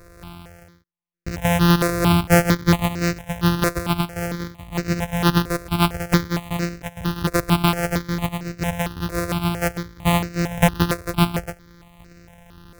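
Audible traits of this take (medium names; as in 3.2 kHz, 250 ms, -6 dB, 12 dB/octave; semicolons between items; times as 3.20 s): a buzz of ramps at a fixed pitch in blocks of 256 samples; random-step tremolo 3.5 Hz; notches that jump at a steady rate 4.4 Hz 840–3300 Hz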